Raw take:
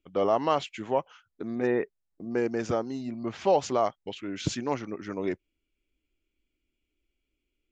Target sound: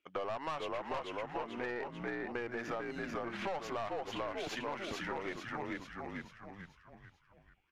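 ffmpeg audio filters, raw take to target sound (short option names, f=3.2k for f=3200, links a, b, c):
-filter_complex "[0:a]acrossover=split=2600[a][b];[b]aeval=exprs='max(val(0),0)':c=same[c];[a][c]amix=inputs=2:normalize=0,bandpass=f=1.9k:t=q:w=0.8:csg=0,asplit=7[d][e][f][g][h][i][j];[e]adelay=441,afreqshift=-64,volume=-3.5dB[k];[f]adelay=882,afreqshift=-128,volume=-10.4dB[l];[g]adelay=1323,afreqshift=-192,volume=-17.4dB[m];[h]adelay=1764,afreqshift=-256,volume=-24.3dB[n];[i]adelay=2205,afreqshift=-320,volume=-31.2dB[o];[j]adelay=2646,afreqshift=-384,volume=-38.2dB[p];[d][k][l][m][n][o][p]amix=inputs=7:normalize=0,aeval=exprs='(tanh(31.6*val(0)+0.35)-tanh(0.35))/31.6':c=same,acompressor=threshold=-45dB:ratio=6,volume=9dB"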